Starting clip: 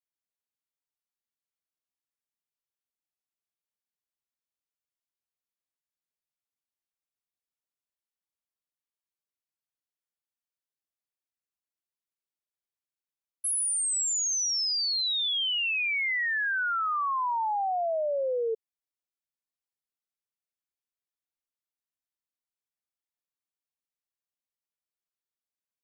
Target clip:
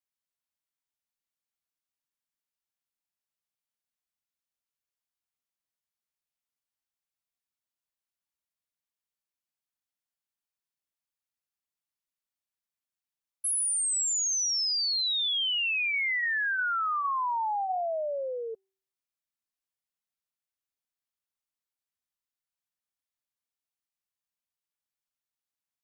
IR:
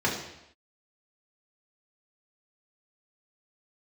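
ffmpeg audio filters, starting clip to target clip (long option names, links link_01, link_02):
-af "equalizer=frequency=410:width_type=o:width=0.8:gain=-8.5,bandreject=frequency=385.2:width_type=h:width=4,bandreject=frequency=770.4:width_type=h:width=4,bandreject=frequency=1155.6:width_type=h:width=4,bandreject=frequency=1540.8:width_type=h:width=4,bandreject=frequency=1926:width_type=h:width=4,bandreject=frequency=2311.2:width_type=h:width=4"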